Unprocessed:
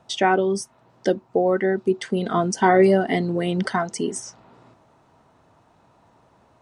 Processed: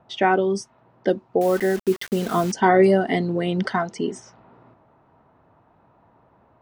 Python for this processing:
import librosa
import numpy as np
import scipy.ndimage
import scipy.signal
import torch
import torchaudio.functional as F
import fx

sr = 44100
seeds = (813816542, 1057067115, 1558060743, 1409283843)

y = fx.env_lowpass(x, sr, base_hz=1900.0, full_db=-14.5)
y = fx.quant_dither(y, sr, seeds[0], bits=6, dither='none', at=(1.41, 2.52))